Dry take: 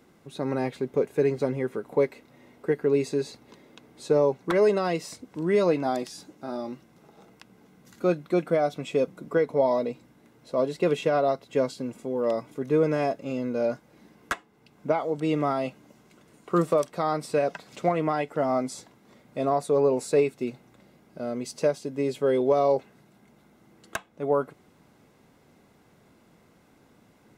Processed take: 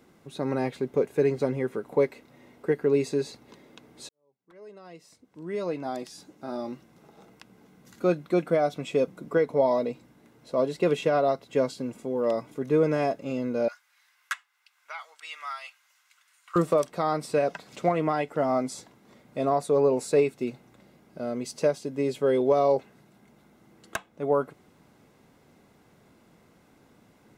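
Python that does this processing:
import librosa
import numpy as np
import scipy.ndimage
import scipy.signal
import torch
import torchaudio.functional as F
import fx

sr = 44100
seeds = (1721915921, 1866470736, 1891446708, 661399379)

y = fx.highpass(x, sr, hz=1300.0, slope=24, at=(13.68, 16.56))
y = fx.edit(y, sr, fx.fade_in_span(start_s=4.09, length_s=2.54, curve='qua'), tone=tone)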